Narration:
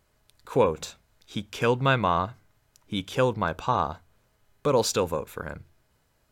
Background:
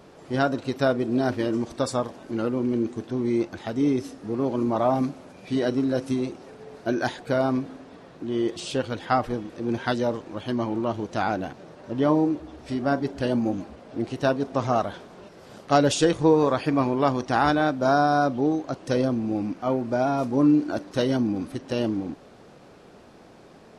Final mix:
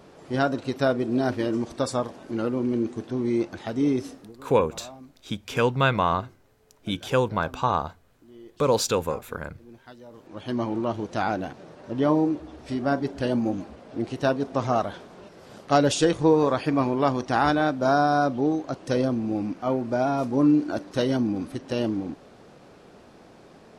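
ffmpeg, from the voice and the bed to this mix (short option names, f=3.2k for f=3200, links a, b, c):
-filter_complex "[0:a]adelay=3950,volume=1dB[a];[1:a]volume=20.5dB,afade=t=out:st=4.1:d=0.23:silence=0.0891251,afade=t=in:st=10.1:d=0.48:silence=0.0891251[b];[a][b]amix=inputs=2:normalize=0"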